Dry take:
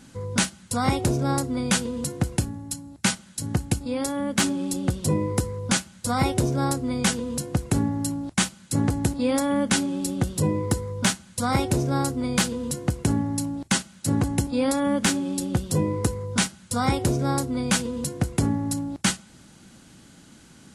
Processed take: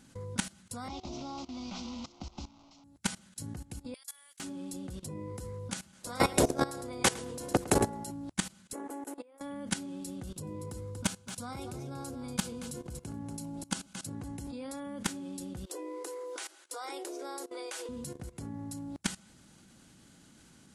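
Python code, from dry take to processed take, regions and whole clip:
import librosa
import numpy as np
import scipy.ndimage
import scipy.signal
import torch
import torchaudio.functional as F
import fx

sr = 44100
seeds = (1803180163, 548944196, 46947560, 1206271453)

y = fx.chain(x, sr, fx.delta_mod(bps=32000, step_db=-30.0),
    fx.peak_eq(hz=270.0, db=-4.5, octaves=2.1),
    fx.fixed_phaser(hz=460.0, stages=6), at=(0.88, 2.84))
y = fx.chain(y, sr, fx.highpass(hz=1400.0, slope=12),
    fx.differentiator(),
    fx.over_compress(threshold_db=-40.0, ratio=-1.0), at=(3.94, 4.4))
y = fx.spec_clip(y, sr, under_db=15, at=(5.92, 8.1), fade=0.02)
y = fx.peak_eq(y, sr, hz=480.0, db=6.5, octaves=2.6, at=(5.92, 8.1), fade=0.02)
y = fx.echo_feedback(y, sr, ms=108, feedback_pct=15, wet_db=-7.5, at=(5.92, 8.1), fade=0.02)
y = fx.chain(y, sr, fx.steep_highpass(hz=330.0, slope=36),
    fx.peak_eq(hz=4600.0, db=-14.5, octaves=1.2),
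    fx.over_compress(threshold_db=-34.0, ratio=-0.5), at=(8.73, 9.41))
y = fx.chain(y, sr, fx.notch(hz=1900.0, q=7.6),
    fx.echo_single(ms=237, db=-11.5), at=(10.23, 14.15))
y = fx.chain(y, sr, fx.brickwall_highpass(low_hz=290.0),
    fx.band_squash(depth_pct=40), at=(15.66, 17.89))
y = fx.high_shelf(y, sr, hz=7000.0, db=2.5)
y = fx.level_steps(y, sr, step_db=18)
y = y * librosa.db_to_amplitude(-4.5)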